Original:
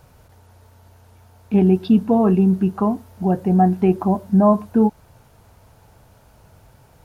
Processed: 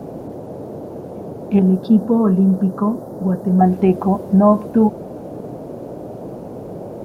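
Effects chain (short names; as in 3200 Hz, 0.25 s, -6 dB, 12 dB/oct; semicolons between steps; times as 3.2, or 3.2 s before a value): 1.59–3.61 fixed phaser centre 490 Hz, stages 8; band noise 110–630 Hz -33 dBFS; gain +2 dB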